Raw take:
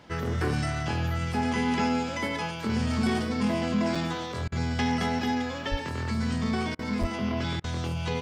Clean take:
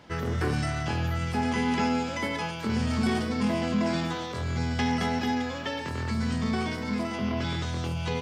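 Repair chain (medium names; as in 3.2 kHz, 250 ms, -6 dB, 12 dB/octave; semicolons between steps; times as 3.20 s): 5.70–5.82 s: high-pass 140 Hz 24 dB/octave; 7.00–7.12 s: high-pass 140 Hz 24 dB/octave; interpolate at 3.95/7.03 s, 4.7 ms; interpolate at 4.48/6.75/7.60 s, 39 ms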